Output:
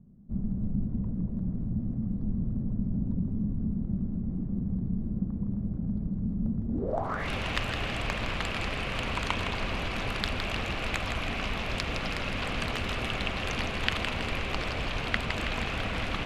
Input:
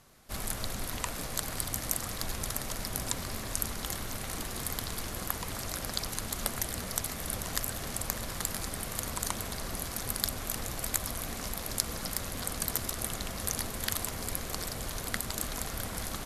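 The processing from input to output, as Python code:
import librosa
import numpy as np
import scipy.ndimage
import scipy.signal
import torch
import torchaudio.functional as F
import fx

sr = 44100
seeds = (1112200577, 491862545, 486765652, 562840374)

y = fx.echo_split(x, sr, split_hz=1000.0, low_ms=234, high_ms=162, feedback_pct=52, wet_db=-6.5)
y = fx.filter_sweep_lowpass(y, sr, from_hz=200.0, to_hz=2600.0, start_s=6.67, end_s=7.29, q=4.3)
y = fx.dynamic_eq(y, sr, hz=2000.0, q=1.6, threshold_db=-57.0, ratio=4.0, max_db=-4)
y = F.gain(torch.from_numpy(y), 4.5).numpy()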